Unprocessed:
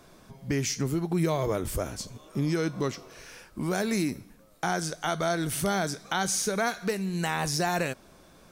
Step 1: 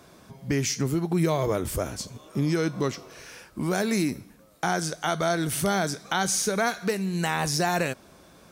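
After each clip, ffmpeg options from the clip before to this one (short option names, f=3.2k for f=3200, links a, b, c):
-af "highpass=52,volume=2.5dB"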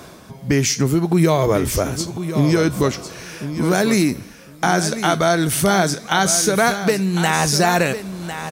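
-af "areverse,acompressor=mode=upward:threshold=-40dB:ratio=2.5,areverse,aecho=1:1:1052|2104:0.299|0.0448,volume=8.5dB"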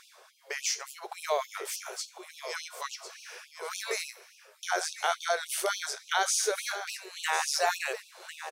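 -af "highshelf=f=11k:g=-7,afftfilt=real='re*gte(b*sr/1024,360*pow(2500/360,0.5+0.5*sin(2*PI*3.5*pts/sr)))':imag='im*gte(b*sr/1024,360*pow(2500/360,0.5+0.5*sin(2*PI*3.5*pts/sr)))':win_size=1024:overlap=0.75,volume=-9dB"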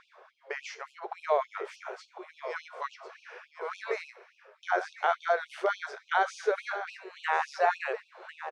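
-af "lowpass=1.7k,volume=3dB"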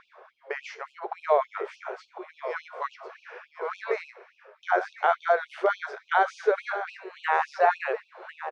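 -af "aemphasis=mode=reproduction:type=75kf,volume=5dB"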